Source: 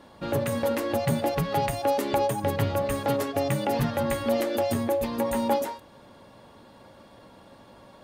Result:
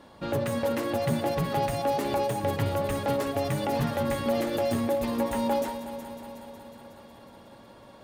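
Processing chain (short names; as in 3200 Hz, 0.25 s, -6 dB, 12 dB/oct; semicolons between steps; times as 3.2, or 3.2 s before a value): in parallel at +1.5 dB: limiter -18.5 dBFS, peak gain reduction 7 dB; on the sum: multi-head echo 0.183 s, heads first and second, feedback 67%, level -15.5 dB; slew limiter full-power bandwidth 240 Hz; gain -7.5 dB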